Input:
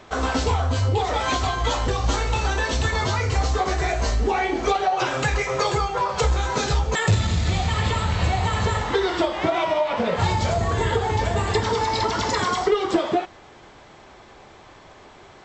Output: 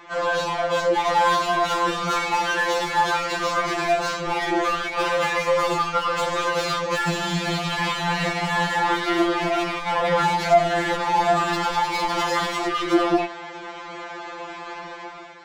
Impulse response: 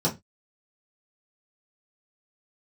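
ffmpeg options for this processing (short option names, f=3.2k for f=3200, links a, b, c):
-filter_complex "[0:a]dynaudnorm=f=160:g=7:m=10dB,asplit=2[a][b];[b]highpass=f=720:p=1,volume=24dB,asoftclip=type=tanh:threshold=-2.5dB[c];[a][c]amix=inputs=2:normalize=0,lowpass=f=2k:p=1,volume=-6dB,afftfilt=real='re*2.83*eq(mod(b,8),0)':imag='im*2.83*eq(mod(b,8),0)':win_size=2048:overlap=0.75,volume=-9dB"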